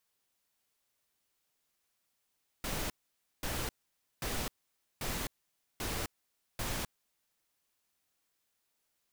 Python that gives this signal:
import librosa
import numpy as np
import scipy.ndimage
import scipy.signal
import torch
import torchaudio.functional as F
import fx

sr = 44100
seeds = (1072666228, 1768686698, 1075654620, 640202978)

y = fx.noise_burst(sr, seeds[0], colour='pink', on_s=0.26, off_s=0.53, bursts=6, level_db=-36.0)